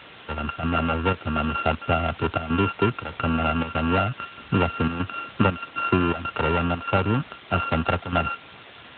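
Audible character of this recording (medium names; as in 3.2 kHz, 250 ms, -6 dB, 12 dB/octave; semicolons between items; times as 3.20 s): a buzz of ramps at a fixed pitch in blocks of 32 samples; chopped level 1.6 Hz, depth 65%, duty 80%; a quantiser's noise floor 6-bit, dither triangular; AMR-NB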